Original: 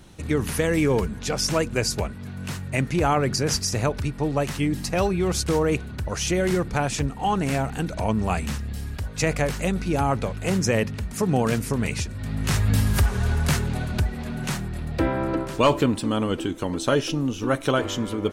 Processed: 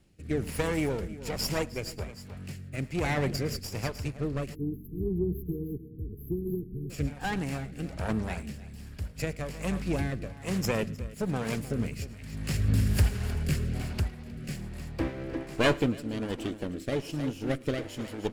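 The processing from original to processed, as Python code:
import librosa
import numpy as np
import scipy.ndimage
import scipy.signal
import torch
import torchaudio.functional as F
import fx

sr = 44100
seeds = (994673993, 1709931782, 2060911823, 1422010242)

p1 = fx.lower_of_two(x, sr, delay_ms=0.4)
p2 = p1 + fx.echo_multitap(p1, sr, ms=(109, 310), db=(-18.0, -12.0), dry=0)
p3 = fx.spec_erase(p2, sr, start_s=4.54, length_s=2.36, low_hz=460.0, high_hz=11000.0)
p4 = fx.rotary(p3, sr, hz=1.2)
p5 = 10.0 ** (-17.0 / 20.0) * np.tanh(p4 / 10.0 ** (-17.0 / 20.0))
p6 = p4 + (p5 * 10.0 ** (-10.5 / 20.0))
p7 = fx.upward_expand(p6, sr, threshold_db=-37.0, expansion=1.5)
y = p7 * 10.0 ** (-3.0 / 20.0)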